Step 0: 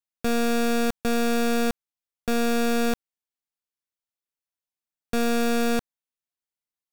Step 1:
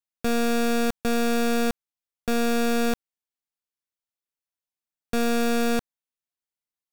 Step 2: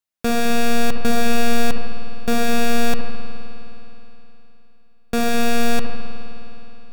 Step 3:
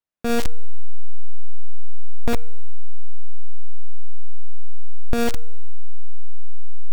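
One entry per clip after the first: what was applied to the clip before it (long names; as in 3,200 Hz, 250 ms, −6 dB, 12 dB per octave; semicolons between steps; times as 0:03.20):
no processing that can be heard
on a send: bucket-brigade delay 71 ms, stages 1,024, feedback 48%, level −10 dB; on the sum: spring reverb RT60 3.4 s, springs 52 ms, chirp 35 ms, DRR 3 dB; level +4.5 dB
each half-wave held at its own peak; tuned comb filter 67 Hz, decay 0.76 s, harmonics odd, mix 30%; one half of a high-frequency compander decoder only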